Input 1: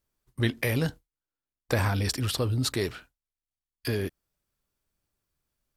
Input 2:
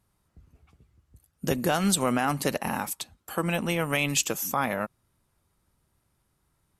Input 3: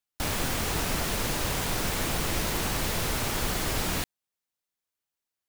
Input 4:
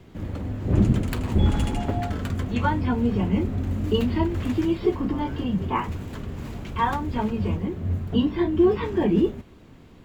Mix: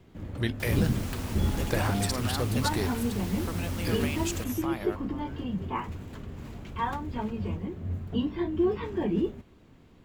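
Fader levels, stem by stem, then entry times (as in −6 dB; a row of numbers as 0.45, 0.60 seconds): −3.5, −10.5, −12.5, −7.0 decibels; 0.00, 0.10, 0.40, 0.00 seconds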